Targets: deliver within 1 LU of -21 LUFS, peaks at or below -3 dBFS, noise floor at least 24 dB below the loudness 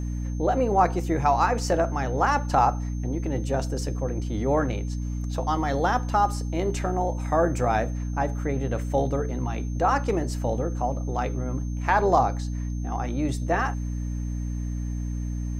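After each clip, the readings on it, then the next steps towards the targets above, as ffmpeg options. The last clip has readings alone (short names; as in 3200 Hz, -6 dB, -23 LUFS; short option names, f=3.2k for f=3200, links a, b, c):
hum 60 Hz; harmonics up to 300 Hz; hum level -27 dBFS; steady tone 6300 Hz; tone level -51 dBFS; loudness -26.0 LUFS; peak -7.0 dBFS; loudness target -21.0 LUFS
-> -af "bandreject=f=60:t=h:w=4,bandreject=f=120:t=h:w=4,bandreject=f=180:t=h:w=4,bandreject=f=240:t=h:w=4,bandreject=f=300:t=h:w=4"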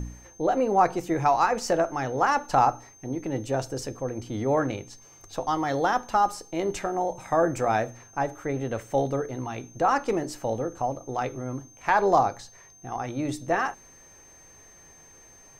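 hum none; steady tone 6300 Hz; tone level -51 dBFS
-> -af "bandreject=f=6.3k:w=30"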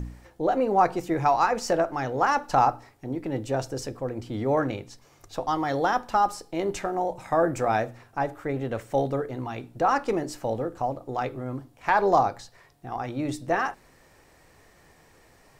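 steady tone none; loudness -26.5 LUFS; peak -7.5 dBFS; loudness target -21.0 LUFS
-> -af "volume=5.5dB,alimiter=limit=-3dB:level=0:latency=1"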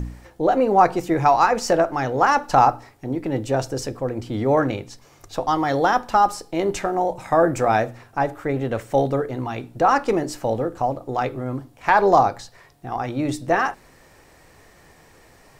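loudness -21.0 LUFS; peak -3.0 dBFS; noise floor -52 dBFS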